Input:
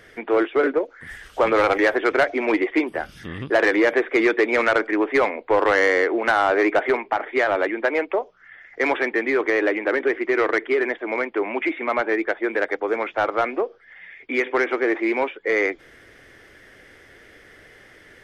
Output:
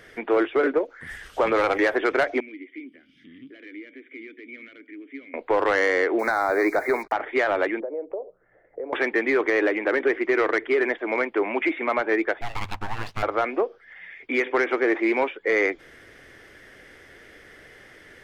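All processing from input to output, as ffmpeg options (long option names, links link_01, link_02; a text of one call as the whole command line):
ffmpeg -i in.wav -filter_complex "[0:a]asettb=1/sr,asplit=3[link_01][link_02][link_03];[link_01]atrim=end=2.404[link_04];[link_02]atrim=start=2.4:end=5.34,asetpts=PTS-STARTPTS,afade=type=in:duration=0.004:curve=qsin,afade=type=out:start_time=2.936:duration=0.004:curve=qsin,acompressor=threshold=-34dB:ratio=2:attack=3.2:release=140:knee=1:detection=peak,asplit=3[link_05][link_06][link_07];[link_05]bandpass=frequency=270:width_type=q:width=8,volume=0dB[link_08];[link_06]bandpass=frequency=2290:width_type=q:width=8,volume=-6dB[link_09];[link_07]bandpass=frequency=3010:width_type=q:width=8,volume=-9dB[link_10];[link_08][link_09][link_10]amix=inputs=3:normalize=0[link_11];[link_03]atrim=start=5.336[link_12];[link_04][link_11]acrossfade=duration=0.004:curve1=hsin:curve2=qsin[link_13];[link_13][link_12]acrossfade=duration=0.004:curve1=qsin:curve2=hsin,asettb=1/sr,asplit=3[link_14][link_15][link_16];[link_14]atrim=end=6.194[link_17];[link_15]atrim=start=6.19:end=7.12,asetpts=PTS-STARTPTS,afade=type=in:duration=0.004:curve=qsin,afade=type=out:start_time=0.926:duration=0.004:curve=qsin,acrusher=bits=6:mix=0:aa=0.5,asuperstop=centerf=3000:order=8:qfactor=2.1[link_18];[link_16]atrim=start=7.116[link_19];[link_17][link_18]acrossfade=duration=0.004:curve1=hsin:curve2=qsin[link_20];[link_20][link_19]acrossfade=duration=0.004:curve1=qsin:curve2=hsin,asettb=1/sr,asplit=3[link_21][link_22][link_23];[link_21]atrim=end=7.804[link_24];[link_22]atrim=start=7.8:end=8.93,asetpts=PTS-STARTPTS,afade=type=in:duration=0.004:curve=qsin,afade=type=out:start_time=1.126:duration=0.004:curve=qsin,equalizer=frequency=220:width_type=o:width=0.27:gain=-7.5,acompressor=threshold=-34dB:ratio=8:attack=3.2:release=140:knee=1:detection=peak,lowpass=frequency=530:width_type=q:width=3.3[link_25];[link_23]atrim=start=8.926[link_26];[link_24][link_25]acrossfade=duration=0.004:curve1=hsin:curve2=qsin[link_27];[link_27][link_26]acrossfade=duration=0.004:curve1=qsin:curve2=hsin,asettb=1/sr,asplit=3[link_28][link_29][link_30];[link_28]atrim=end=12.414[link_31];[link_29]atrim=start=12.41:end=13.23,asetpts=PTS-STARTPTS,afade=type=in:duration=0.004:curve=qsin,afade=type=out:start_time=0.816:duration=0.004:curve=qsin,bandpass=frequency=690:width_type=q:width=0.52,aeval=exprs='abs(val(0))':channel_layout=same,acompressor=threshold=-24dB:ratio=2:attack=3.2:release=140:knee=1:detection=peak[link_32];[link_30]atrim=start=13.226[link_33];[link_31][link_32]acrossfade=duration=0.004:curve1=hsin:curve2=qsin[link_34];[link_34][link_33]acrossfade=duration=0.004:curve1=qsin:curve2=hsin,bandreject=frequency=50:width_type=h:width=6,bandreject=frequency=100:width_type=h:width=6,alimiter=limit=-13dB:level=0:latency=1:release=160" out.wav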